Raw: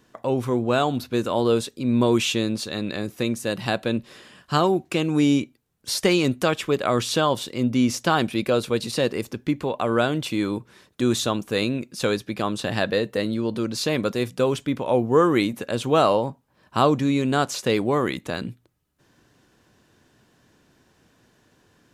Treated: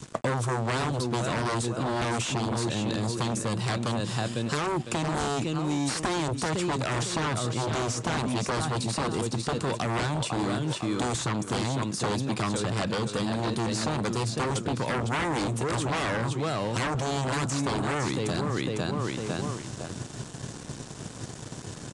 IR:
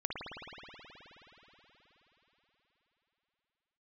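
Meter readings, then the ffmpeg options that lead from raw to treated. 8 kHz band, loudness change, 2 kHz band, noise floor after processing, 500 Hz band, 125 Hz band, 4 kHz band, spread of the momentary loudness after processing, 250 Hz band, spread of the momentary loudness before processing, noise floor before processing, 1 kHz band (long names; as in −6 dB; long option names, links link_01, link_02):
+0.5 dB, −5.5 dB, −3.0 dB, −41 dBFS, −8.0 dB, +0.5 dB, −4.5 dB, 5 LU, −6.5 dB, 8 LU, −63 dBFS, −3.5 dB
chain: -filter_complex "[0:a]equalizer=frequency=125:width_type=o:width=1:gain=10,equalizer=frequency=2000:width_type=o:width=1:gain=-7,equalizer=frequency=8000:width_type=o:width=1:gain=9,asplit=2[link_01][link_02];[link_02]adelay=503,lowpass=frequency=3900:poles=1,volume=-8.5dB,asplit=2[link_03][link_04];[link_04]adelay=503,lowpass=frequency=3900:poles=1,volume=0.29,asplit=2[link_05][link_06];[link_06]adelay=503,lowpass=frequency=3900:poles=1,volume=0.29[link_07];[link_03][link_05][link_07]amix=inputs=3:normalize=0[link_08];[link_01][link_08]amix=inputs=2:normalize=0,aeval=exprs='0.668*sin(PI/2*5.62*val(0)/0.668)':channel_layout=same,highpass=44,areverse,acompressor=threshold=-18dB:ratio=6,areverse,aeval=exprs='sgn(val(0))*max(abs(val(0))-0.00944,0)':channel_layout=same,aresample=22050,aresample=44100,acrossover=split=400|2000[link_09][link_10][link_11];[link_09]acompressor=threshold=-34dB:ratio=4[link_12];[link_10]acompressor=threshold=-32dB:ratio=4[link_13];[link_11]acompressor=threshold=-40dB:ratio=4[link_14];[link_12][link_13][link_14]amix=inputs=3:normalize=0,adynamicequalizer=threshold=0.00562:dfrequency=540:dqfactor=1.6:tfrequency=540:tqfactor=1.6:attack=5:release=100:ratio=0.375:range=2.5:mode=cutabove:tftype=bell,volume=3dB"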